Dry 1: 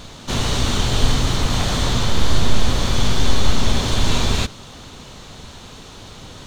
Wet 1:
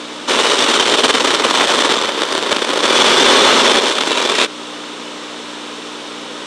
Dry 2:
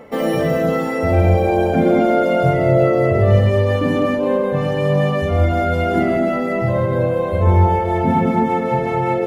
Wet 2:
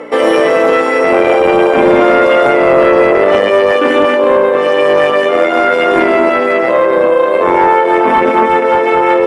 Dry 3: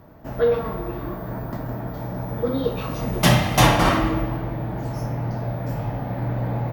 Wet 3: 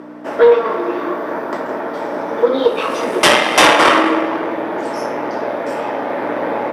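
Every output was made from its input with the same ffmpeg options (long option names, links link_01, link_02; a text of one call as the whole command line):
ffmpeg -i in.wav -filter_complex "[0:a]aeval=exprs='0.891*(cos(1*acos(clip(val(0)/0.891,-1,1)))-cos(1*PI/2))+0.112*(cos(3*acos(clip(val(0)/0.891,-1,1)))-cos(3*PI/2))+0.126*(cos(4*acos(clip(val(0)/0.891,-1,1)))-cos(4*PI/2))+0.00562*(cos(6*acos(clip(val(0)/0.891,-1,1)))-cos(6*PI/2))':channel_layout=same,aeval=exprs='val(0)+0.0224*(sin(2*PI*60*n/s)+sin(2*PI*2*60*n/s)/2+sin(2*PI*3*60*n/s)/3+sin(2*PI*4*60*n/s)/4+sin(2*PI*5*60*n/s)/5)':channel_layout=same,highpass=frequency=350:width=0.5412,highpass=frequency=350:width=1.3066,equalizer=frequency=730:width_type=q:width=4:gain=-6,equalizer=frequency=4300:width_type=q:width=4:gain=-6,equalizer=frequency=6600:width_type=q:width=4:gain=-8,lowpass=frequency=9200:width=0.5412,lowpass=frequency=9200:width=1.3066,asplit=2[link_01][link_02];[link_02]acompressor=threshold=-32dB:ratio=5,volume=-0.5dB[link_03];[link_01][link_03]amix=inputs=2:normalize=0,apsyclip=15dB,volume=-2dB" out.wav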